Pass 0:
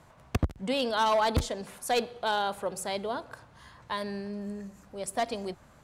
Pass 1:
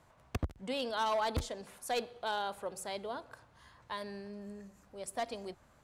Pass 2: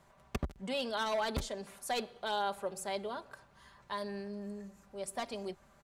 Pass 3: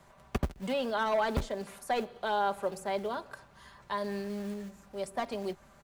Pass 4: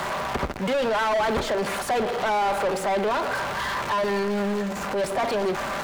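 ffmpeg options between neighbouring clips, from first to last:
-af "equalizer=f=170:t=o:w=1:g=-3.5,volume=0.447"
-af "aecho=1:1:5.1:0.53"
-filter_complex "[0:a]acrossover=split=330|2400[s0][s1][s2];[s0]acrusher=bits=3:mode=log:mix=0:aa=0.000001[s3];[s2]acompressor=threshold=0.00224:ratio=6[s4];[s3][s1][s4]amix=inputs=3:normalize=0,volume=1.78"
-filter_complex "[0:a]aeval=exprs='val(0)+0.5*0.00944*sgn(val(0))':c=same,asplit=2[s0][s1];[s1]highpass=f=720:p=1,volume=35.5,asoftclip=type=tanh:threshold=0.158[s2];[s0][s2]amix=inputs=2:normalize=0,lowpass=f=1900:p=1,volume=0.501"

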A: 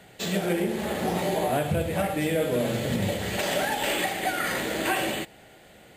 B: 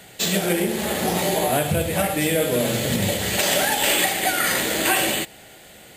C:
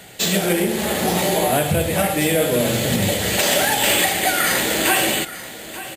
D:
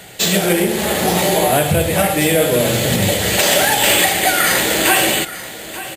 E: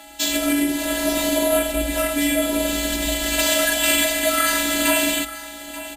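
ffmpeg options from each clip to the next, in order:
-af "highshelf=f=3300:g=10.5,volume=1.5"
-filter_complex "[0:a]asplit=2[s0][s1];[s1]asoftclip=type=tanh:threshold=0.141,volume=0.447[s2];[s0][s2]amix=inputs=2:normalize=0,aecho=1:1:884:0.178"
-af "equalizer=f=240:t=o:w=0.38:g=-4,volume=1.58"
-af "afftfilt=real='hypot(re,im)*cos(PI*b)':imag='0':win_size=512:overlap=0.75,afreqshift=-57,aeval=exprs='val(0)+0.00562*sin(2*PI*830*n/s)':c=same,volume=0.841"

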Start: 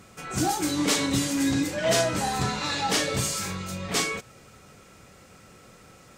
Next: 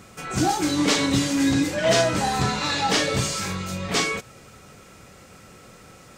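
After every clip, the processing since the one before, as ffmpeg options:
-filter_complex "[0:a]acrossover=split=7000[s0][s1];[s1]acompressor=threshold=0.00631:ratio=4:attack=1:release=60[s2];[s0][s2]amix=inputs=2:normalize=0,volume=1.58"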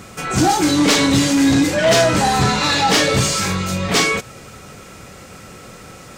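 -af "asoftclip=type=tanh:threshold=0.141,volume=2.82"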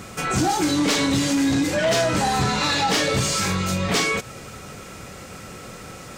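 -af "acompressor=threshold=0.1:ratio=3"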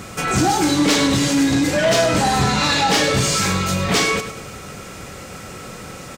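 -af "aecho=1:1:100|200|300|400:0.299|0.11|0.0409|0.0151,volume=1.5"

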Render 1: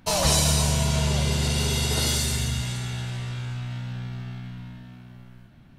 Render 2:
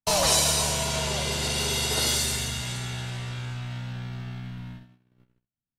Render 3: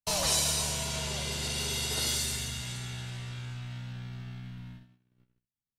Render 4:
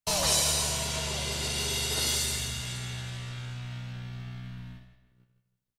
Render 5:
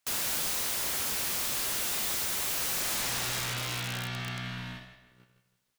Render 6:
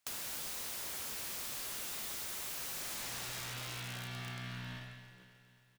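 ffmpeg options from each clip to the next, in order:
-filter_complex "[0:a]agate=range=0.00562:threshold=0.01:ratio=16:detection=peak,acrossover=split=320[s0][s1];[s0]acompressor=threshold=0.0224:ratio=6[s2];[s2][s1]amix=inputs=2:normalize=0,volume=1.12"
-af "equalizer=f=690:t=o:w=2.4:g=-4.5,volume=0.562"
-filter_complex "[0:a]asplit=2[s0][s1];[s1]adelay=161,lowpass=f=4400:p=1,volume=0.316,asplit=2[s2][s3];[s3]adelay=161,lowpass=f=4400:p=1,volume=0.43,asplit=2[s4][s5];[s5]adelay=161,lowpass=f=4400:p=1,volume=0.43,asplit=2[s6][s7];[s7]adelay=161,lowpass=f=4400:p=1,volume=0.43,asplit=2[s8][s9];[s9]adelay=161,lowpass=f=4400:p=1,volume=0.43[s10];[s0][s2][s4][s6][s8][s10]amix=inputs=6:normalize=0,volume=1.26"
-filter_complex "[0:a]asplit=2[s0][s1];[s1]highpass=f=720:p=1,volume=10,asoftclip=type=tanh:threshold=0.237[s2];[s0][s2]amix=inputs=2:normalize=0,lowpass=f=7900:p=1,volume=0.501,aeval=exprs='(mod(21.1*val(0)+1,2)-1)/21.1':c=same"
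-filter_complex "[0:a]acompressor=threshold=0.01:ratio=6,asplit=2[s0][s1];[s1]aecho=0:1:268|536|804|1072|1340|1608:0.237|0.13|0.0717|0.0395|0.0217|0.0119[s2];[s0][s2]amix=inputs=2:normalize=0,volume=0.891"

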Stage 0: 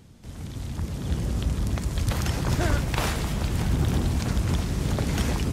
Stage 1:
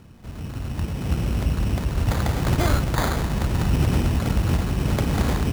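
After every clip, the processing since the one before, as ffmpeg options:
-af "acrusher=samples=16:mix=1:aa=0.000001,volume=1.5"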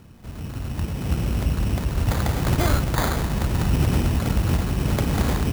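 -af "highshelf=f=11000:g=5.5"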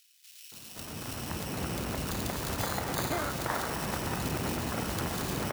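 -filter_complex "[0:a]highpass=f=520:p=1,acompressor=threshold=0.0316:ratio=3,acrossover=split=2800[s0][s1];[s0]adelay=520[s2];[s2][s1]amix=inputs=2:normalize=0,volume=1.19"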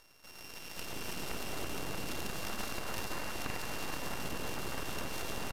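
-af "acompressor=threshold=0.02:ratio=6,aeval=exprs='abs(val(0))':c=same,aresample=32000,aresample=44100,volume=1.26"

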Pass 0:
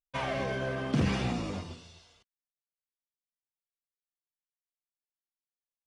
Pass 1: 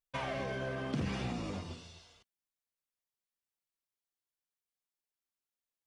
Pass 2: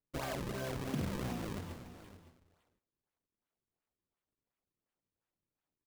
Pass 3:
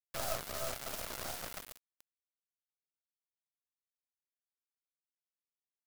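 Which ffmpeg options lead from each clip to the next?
-af "acompressor=threshold=0.0126:ratio=2"
-af "acrusher=samples=36:mix=1:aa=0.000001:lfo=1:lforange=57.6:lforate=2.8,aecho=1:1:561:0.178,volume=0.841"
-af "aexciter=amount=5.3:drive=4:freq=4100,highpass=f=630:t=q:w=4.9,acrusher=bits=3:dc=4:mix=0:aa=0.000001,volume=0.668"

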